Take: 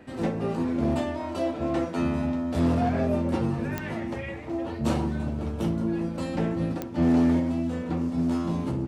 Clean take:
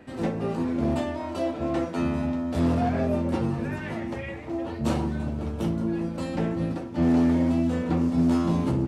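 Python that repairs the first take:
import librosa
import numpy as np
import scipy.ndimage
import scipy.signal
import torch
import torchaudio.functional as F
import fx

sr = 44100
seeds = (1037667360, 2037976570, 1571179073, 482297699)

y = fx.fix_declick_ar(x, sr, threshold=10.0)
y = fx.gain(y, sr, db=fx.steps((0.0, 0.0), (7.4, 4.0)))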